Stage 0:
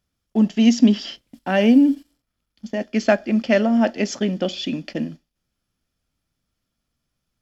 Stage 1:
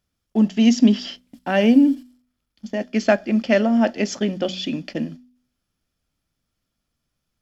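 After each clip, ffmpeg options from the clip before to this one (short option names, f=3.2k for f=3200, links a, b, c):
-af "bandreject=f=62.16:t=h:w=4,bandreject=f=124.32:t=h:w=4,bandreject=f=186.48:t=h:w=4,bandreject=f=248.64:t=h:w=4"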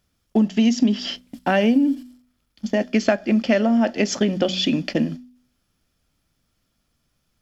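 -af "acompressor=threshold=-23dB:ratio=4,volume=7dB"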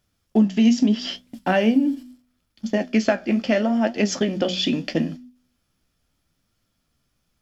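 -af "flanger=delay=8:depth=10:regen=54:speed=0.76:shape=triangular,volume=3dB"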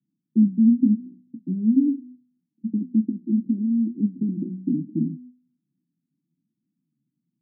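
-af "asuperpass=centerf=210:order=12:qfactor=1.1"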